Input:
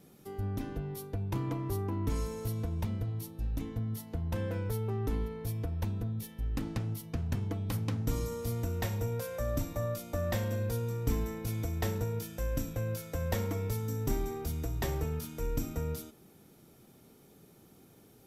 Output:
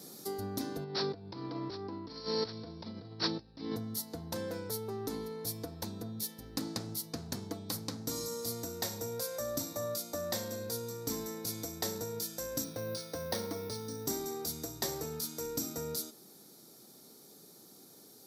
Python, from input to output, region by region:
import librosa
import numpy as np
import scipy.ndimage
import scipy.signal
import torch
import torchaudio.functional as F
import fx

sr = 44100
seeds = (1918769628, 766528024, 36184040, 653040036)

y = fx.chain(x, sr, fx.resample_bad(factor=4, down='none', up='filtered'),
    fx.over_compress(threshold_db=-44.0, ratio=-1.0), at=(0.84, 3.76))
y = fx.chain(y, sr, fx.steep_lowpass(hz=6100.0, slope=48),
    fx.resample_bad(factor=3, down='filtered', up='hold'), at=(12.64, 14.06))
y = fx.high_shelf_res(y, sr, hz=3500.0, db=7.0, q=3.0)
y = fx.rider(y, sr, range_db=10, speed_s=0.5)
y = scipy.signal.sosfilt(scipy.signal.butter(2, 220.0, 'highpass', fs=sr, output='sos'), y)